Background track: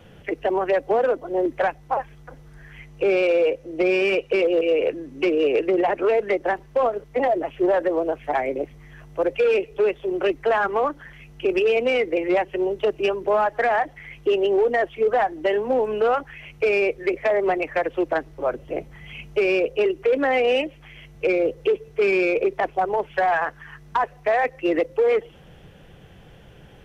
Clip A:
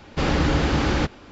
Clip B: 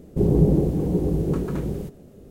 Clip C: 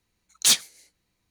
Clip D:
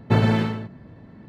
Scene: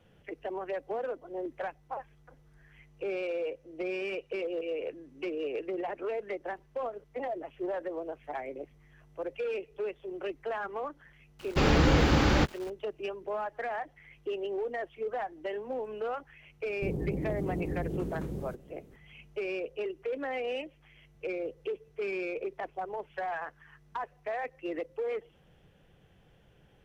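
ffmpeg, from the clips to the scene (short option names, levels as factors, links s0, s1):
-filter_complex "[0:a]volume=0.188[s0];[1:a]aeval=exprs='val(0)*gte(abs(val(0)),0.00841)':c=same[s1];[2:a]alimiter=limit=0.15:level=0:latency=1:release=35[s2];[s1]atrim=end=1.31,asetpts=PTS-STARTPTS,volume=0.75,afade=t=in:d=0.004:c=hsin,afade=t=out:st=1.306:d=0.004:c=hsin,adelay=11390[s3];[s2]atrim=end=2.3,asetpts=PTS-STARTPTS,volume=0.316,afade=t=in:d=0.004:c=hsin,afade=t=out:st=2.296:d=0.004:c=hsin,adelay=16660[s4];[s0][s3][s4]amix=inputs=3:normalize=0"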